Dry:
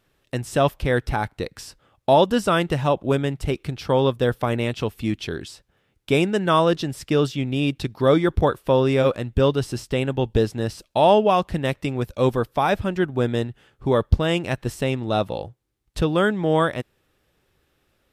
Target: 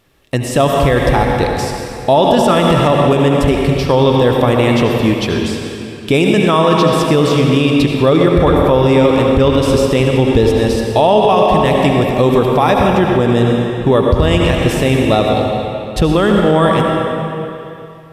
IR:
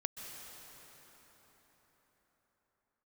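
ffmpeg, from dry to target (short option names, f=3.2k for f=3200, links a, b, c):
-filter_complex "[0:a]bandreject=f=1.5k:w=9.4[a];[1:a]atrim=start_sample=2205,asetrate=79380,aresample=44100[b];[a][b]afir=irnorm=-1:irlink=0,alimiter=level_in=18.5dB:limit=-1dB:release=50:level=0:latency=1,volume=-1dB"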